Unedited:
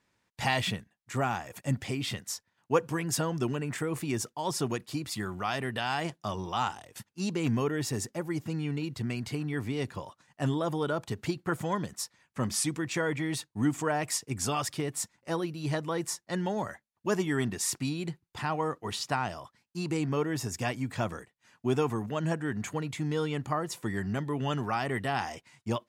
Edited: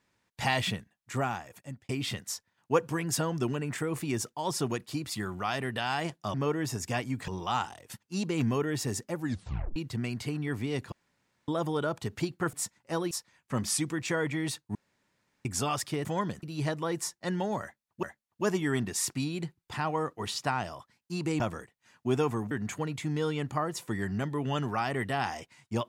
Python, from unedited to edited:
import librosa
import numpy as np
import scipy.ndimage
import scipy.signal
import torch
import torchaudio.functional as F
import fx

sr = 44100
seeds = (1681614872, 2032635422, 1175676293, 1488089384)

y = fx.edit(x, sr, fx.fade_out_span(start_s=1.14, length_s=0.75),
    fx.tape_stop(start_s=8.25, length_s=0.57),
    fx.room_tone_fill(start_s=9.98, length_s=0.56),
    fx.swap(start_s=11.59, length_s=0.38, other_s=14.91, other_length_s=0.58),
    fx.room_tone_fill(start_s=13.61, length_s=0.7),
    fx.repeat(start_s=16.68, length_s=0.41, count=2),
    fx.move(start_s=20.05, length_s=0.94, to_s=6.34),
    fx.cut(start_s=22.1, length_s=0.36), tone=tone)